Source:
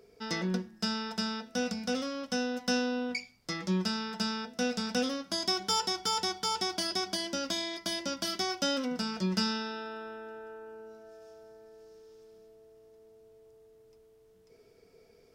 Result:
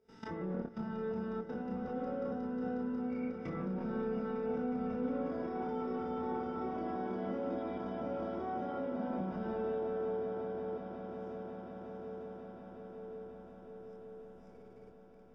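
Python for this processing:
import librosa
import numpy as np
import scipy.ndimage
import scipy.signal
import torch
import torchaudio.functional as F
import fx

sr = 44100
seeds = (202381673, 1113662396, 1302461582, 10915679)

y = fx.spec_swells(x, sr, rise_s=0.44)
y = fx.rev_spring(y, sr, rt60_s=1.5, pass_ms=(52,), chirp_ms=50, drr_db=-1.0)
y = fx.level_steps(y, sr, step_db=18)
y = fx.env_lowpass_down(y, sr, base_hz=1100.0, full_db=-34.5)
y = fx.high_shelf(y, sr, hz=2400.0, db=-7.5)
y = fx.chorus_voices(y, sr, voices=6, hz=0.31, base_ms=25, depth_ms=2.2, mix_pct=35)
y = fx.low_shelf(y, sr, hz=260.0, db=4.5)
y = fx.notch(y, sr, hz=4300.0, q=5.9)
y = fx.echo_swell(y, sr, ms=181, loudest=8, wet_db=-15.0)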